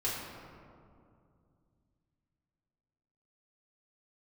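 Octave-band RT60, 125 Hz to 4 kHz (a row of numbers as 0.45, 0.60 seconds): 3.7, 3.2, 2.6, 2.2, 1.5, 1.1 seconds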